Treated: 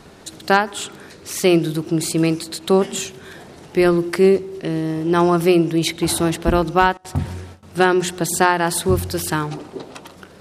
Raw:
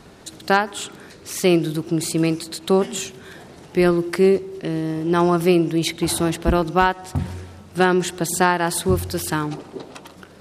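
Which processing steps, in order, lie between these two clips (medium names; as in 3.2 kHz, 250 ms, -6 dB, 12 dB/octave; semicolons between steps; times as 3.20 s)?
hum notches 60/120/180/240/300 Hz; 6.97–7.63 s: gate with hold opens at -28 dBFS; trim +2 dB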